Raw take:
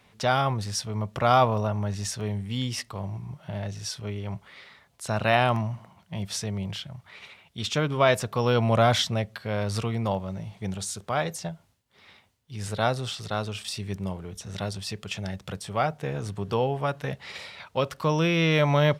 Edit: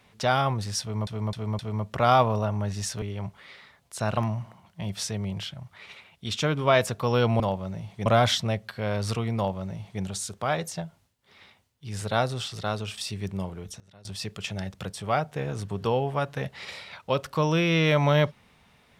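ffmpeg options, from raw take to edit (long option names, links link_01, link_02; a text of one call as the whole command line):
ffmpeg -i in.wav -filter_complex "[0:a]asplit=10[link_01][link_02][link_03][link_04][link_05][link_06][link_07][link_08][link_09][link_10];[link_01]atrim=end=1.072[link_11];[link_02]atrim=start=0.808:end=1.072[link_12];[link_03]atrim=start=0.808:end=1.072[link_13];[link_04]atrim=start=0.808:end=2.242[link_14];[link_05]atrim=start=4.098:end=5.252[link_15];[link_06]atrim=start=5.498:end=8.732[link_16];[link_07]atrim=start=10.028:end=10.692[link_17];[link_08]atrim=start=8.728:end=14.47,asetpts=PTS-STARTPTS,afade=type=out:start_time=5.432:duration=0.31:curve=log:silence=0.0794328[link_18];[link_09]atrim=start=14.47:end=14.72,asetpts=PTS-STARTPTS,volume=-22dB[link_19];[link_10]atrim=start=14.72,asetpts=PTS-STARTPTS,afade=type=in:duration=0.31:curve=log:silence=0.0794328[link_20];[link_11][link_12]acrossfade=duration=0.004:curve1=hsin:curve2=hsin[link_21];[link_21][link_13]acrossfade=duration=0.004:curve1=hsin:curve2=hsin[link_22];[link_22][link_14]acrossfade=duration=0.004:curve1=hsin:curve2=hsin[link_23];[link_23][link_15]acrossfade=duration=0.004:curve1=hsin:curve2=hsin[link_24];[link_24][link_16]acrossfade=duration=0.004:curve1=hsin:curve2=hsin[link_25];[link_25][link_17]acrossfade=duration=0.004:curve1=hsin:curve2=hsin[link_26];[link_18][link_19][link_20]concat=n=3:v=0:a=1[link_27];[link_26][link_27]acrossfade=duration=0.004:curve1=hsin:curve2=hsin" out.wav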